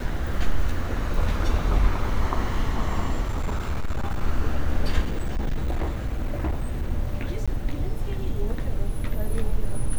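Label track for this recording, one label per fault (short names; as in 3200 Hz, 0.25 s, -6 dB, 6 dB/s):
3.220000	4.220000	clipped -21 dBFS
5.020000	6.900000	clipped -20.5 dBFS
7.460000	7.480000	gap 16 ms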